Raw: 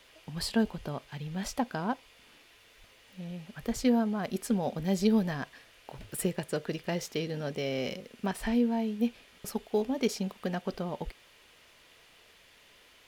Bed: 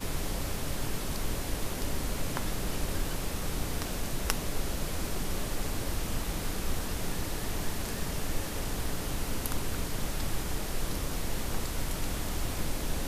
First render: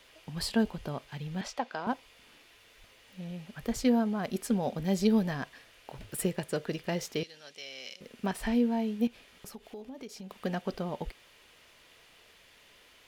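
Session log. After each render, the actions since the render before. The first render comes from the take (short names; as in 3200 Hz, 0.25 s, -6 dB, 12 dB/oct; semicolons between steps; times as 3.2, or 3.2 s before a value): 1.41–1.87 three-band isolator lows -15 dB, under 370 Hz, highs -15 dB, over 6500 Hz; 7.23–8.01 band-pass 5100 Hz, Q 0.8; 9.07–10.31 compressor 4:1, threshold -43 dBFS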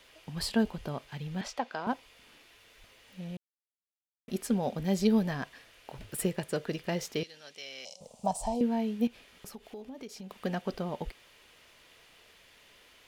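3.37–4.28 mute; 7.85–8.61 EQ curve 170 Hz 0 dB, 340 Hz -18 dB, 600 Hz +8 dB, 870 Hz +9 dB, 1600 Hz -24 dB, 8200 Hz +11 dB, 12000 Hz -6 dB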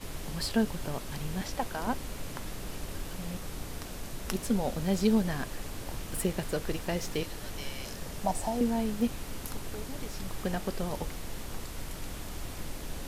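add bed -6.5 dB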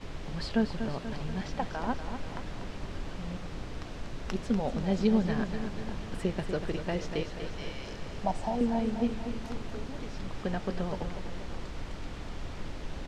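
air absorption 140 m; feedback echo 0.242 s, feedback 58%, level -9 dB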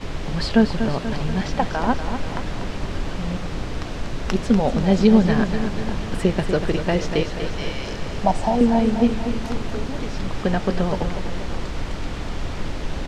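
gain +11.5 dB; limiter -3 dBFS, peak gain reduction 1 dB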